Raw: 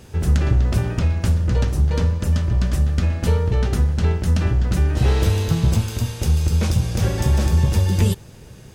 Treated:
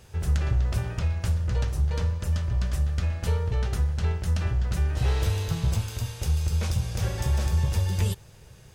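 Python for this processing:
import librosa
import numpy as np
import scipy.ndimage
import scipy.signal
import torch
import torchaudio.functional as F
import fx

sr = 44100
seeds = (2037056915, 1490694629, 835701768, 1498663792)

y = fx.peak_eq(x, sr, hz=260.0, db=-10.5, octaves=1.1)
y = F.gain(torch.from_numpy(y), -6.0).numpy()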